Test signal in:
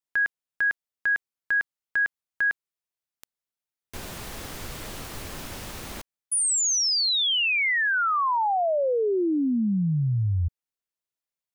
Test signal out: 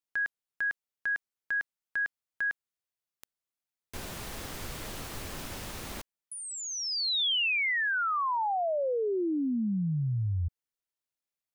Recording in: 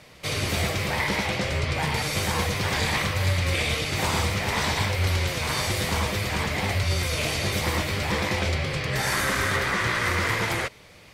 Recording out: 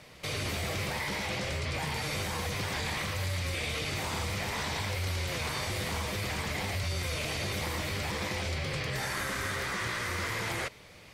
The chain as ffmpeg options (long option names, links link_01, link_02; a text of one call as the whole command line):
ffmpeg -i in.wav -filter_complex "[0:a]acrossover=split=4200[link_01][link_02];[link_01]alimiter=limit=-23.5dB:level=0:latency=1:release=34[link_03];[link_02]acompressor=threshold=-40dB:ratio=6:attack=6.6:release=37:knee=1[link_04];[link_03][link_04]amix=inputs=2:normalize=0,volume=-2.5dB" out.wav